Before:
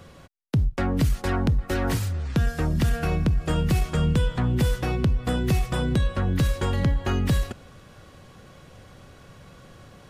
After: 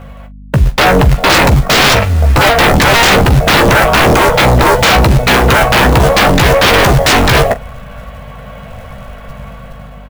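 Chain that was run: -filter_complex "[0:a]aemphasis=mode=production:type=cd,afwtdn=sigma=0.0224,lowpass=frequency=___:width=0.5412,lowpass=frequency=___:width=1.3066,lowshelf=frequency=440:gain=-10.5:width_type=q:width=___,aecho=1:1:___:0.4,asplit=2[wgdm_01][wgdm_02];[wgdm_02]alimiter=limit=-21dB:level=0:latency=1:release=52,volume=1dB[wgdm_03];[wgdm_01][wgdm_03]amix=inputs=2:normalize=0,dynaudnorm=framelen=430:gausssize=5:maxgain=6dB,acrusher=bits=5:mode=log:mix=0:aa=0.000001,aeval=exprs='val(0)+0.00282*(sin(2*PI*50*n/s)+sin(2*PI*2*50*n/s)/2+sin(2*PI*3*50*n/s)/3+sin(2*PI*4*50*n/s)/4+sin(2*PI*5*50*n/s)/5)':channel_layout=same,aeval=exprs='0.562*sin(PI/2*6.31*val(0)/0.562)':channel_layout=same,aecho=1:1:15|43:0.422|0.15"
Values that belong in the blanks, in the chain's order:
2.9k, 2.9k, 3, 4.5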